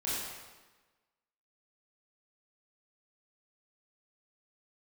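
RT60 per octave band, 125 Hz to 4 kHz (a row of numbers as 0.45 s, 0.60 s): 1.2 s, 1.3 s, 1.2 s, 1.2 s, 1.2 s, 1.1 s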